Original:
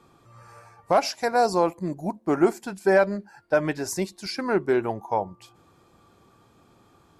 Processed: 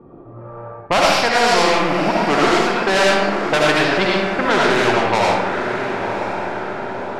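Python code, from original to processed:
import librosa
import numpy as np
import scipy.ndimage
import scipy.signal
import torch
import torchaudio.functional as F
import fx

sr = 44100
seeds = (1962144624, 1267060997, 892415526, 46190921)

p1 = fx.dead_time(x, sr, dead_ms=0.07)
p2 = scipy.signal.sosfilt(scipy.signal.butter(2, 3700.0, 'lowpass', fs=sr, output='sos'), p1)
p3 = fx.low_shelf(p2, sr, hz=260.0, db=-11.5)
p4 = fx.env_lowpass(p3, sr, base_hz=390.0, full_db=-22.0)
p5 = fx.rider(p4, sr, range_db=10, speed_s=0.5)
p6 = p4 + F.gain(torch.from_numpy(p5), -2.5).numpy()
p7 = 10.0 ** (-13.0 / 20.0) * np.tanh(p6 / 10.0 ** (-13.0 / 20.0))
p8 = p7 + fx.echo_diffused(p7, sr, ms=1017, feedback_pct=42, wet_db=-13.5, dry=0)
p9 = fx.rev_freeverb(p8, sr, rt60_s=0.68, hf_ratio=0.85, predelay_ms=40, drr_db=-4.5)
y = fx.spectral_comp(p9, sr, ratio=2.0)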